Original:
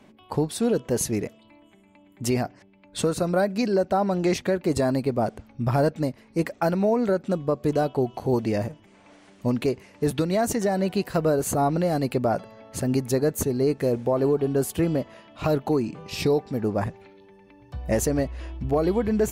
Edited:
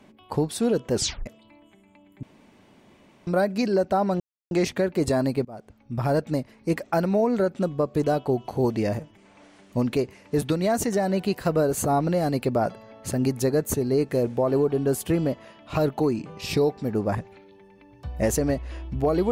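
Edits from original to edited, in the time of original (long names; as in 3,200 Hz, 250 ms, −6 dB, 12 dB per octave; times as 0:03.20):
0:00.94: tape stop 0.32 s
0:02.23–0:03.27: fill with room tone
0:04.20: splice in silence 0.31 s
0:05.14–0:05.97: fade in, from −24 dB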